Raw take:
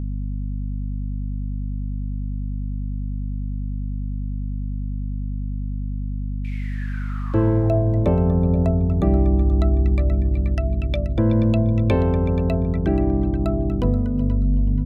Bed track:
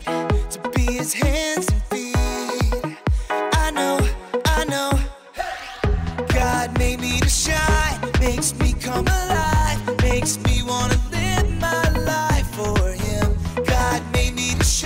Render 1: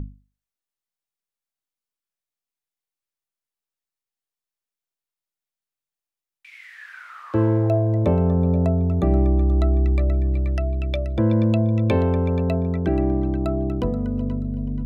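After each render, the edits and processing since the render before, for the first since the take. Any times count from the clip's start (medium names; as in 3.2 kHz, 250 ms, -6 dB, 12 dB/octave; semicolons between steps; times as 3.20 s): hum notches 50/100/150/200/250/300 Hz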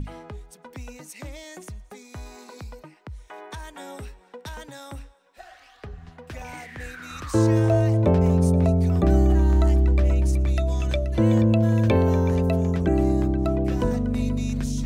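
add bed track -19 dB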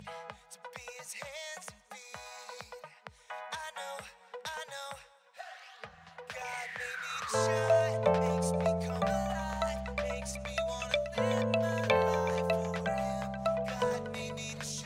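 frequency weighting A; FFT band-reject 220–440 Hz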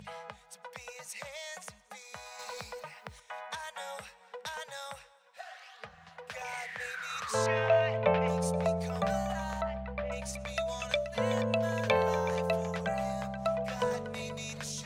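2.39–3.20 s: companding laws mixed up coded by mu; 7.46–8.28 s: resonant low-pass 2.7 kHz, resonance Q 2.2; 9.61–10.12 s: distance through air 390 m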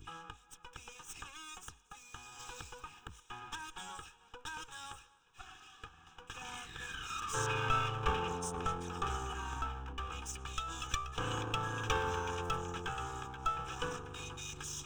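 comb filter that takes the minimum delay 2.4 ms; static phaser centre 3 kHz, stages 8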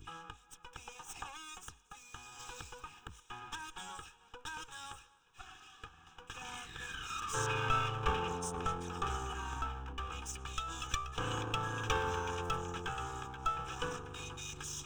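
0.72–1.36 s: peaking EQ 770 Hz +4 dB -> +15 dB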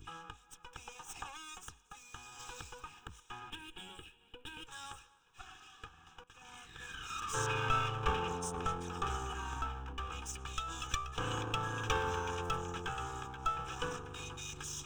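3.50–4.67 s: FFT filter 150 Hz 0 dB, 350 Hz +5 dB, 530 Hz -3 dB, 1.2 kHz -12 dB, 2.9 kHz +4 dB, 6 kHz -16 dB, 9.6 kHz -2 dB; 6.24–7.26 s: fade in, from -14.5 dB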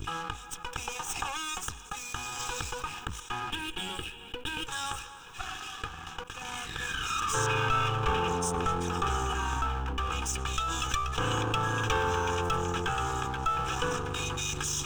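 waveshaping leveller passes 1; level flattener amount 50%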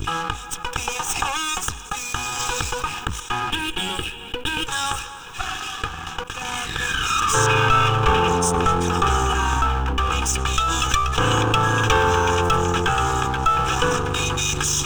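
trim +10.5 dB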